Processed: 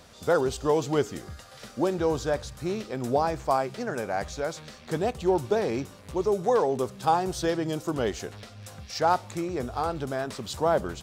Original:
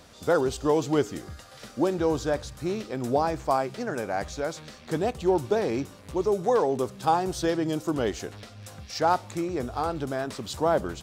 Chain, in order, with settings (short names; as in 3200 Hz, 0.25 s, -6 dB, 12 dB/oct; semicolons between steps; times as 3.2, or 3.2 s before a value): bell 300 Hz -4.5 dB 0.28 oct